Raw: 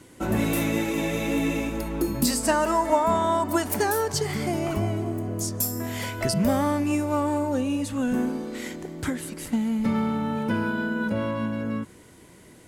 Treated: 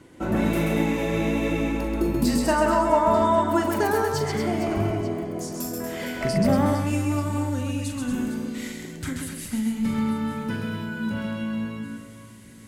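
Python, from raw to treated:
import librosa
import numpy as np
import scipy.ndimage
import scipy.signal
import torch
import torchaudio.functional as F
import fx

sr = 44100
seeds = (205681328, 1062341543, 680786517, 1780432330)

y = fx.peak_eq(x, sr, hz=fx.steps((0.0, 13000.0), (6.66, 610.0)), db=-10.5, octaves=2.1)
y = fx.echo_multitap(y, sr, ms=(41, 132, 236, 459, 890), db=(-8.0, -4.0, -8.0, -12.5, -16.5))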